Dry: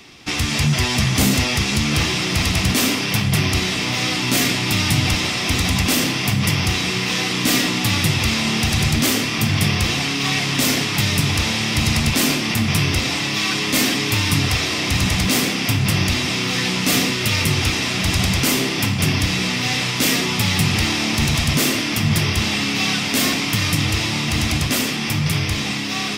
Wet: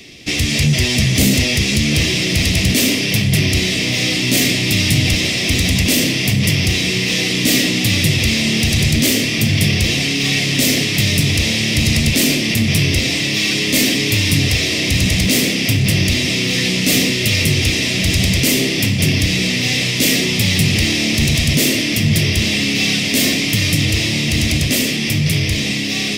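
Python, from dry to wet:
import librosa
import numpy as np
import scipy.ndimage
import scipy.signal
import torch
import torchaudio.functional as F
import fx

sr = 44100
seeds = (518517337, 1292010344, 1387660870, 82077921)

p1 = fx.band_shelf(x, sr, hz=1100.0, db=-15.0, octaves=1.2)
p2 = 10.0 ** (-21.0 / 20.0) * np.tanh(p1 / 10.0 ** (-21.0 / 20.0))
p3 = p1 + (p2 * 10.0 ** (-5.0 / 20.0))
y = p3 * 10.0 ** (1.5 / 20.0)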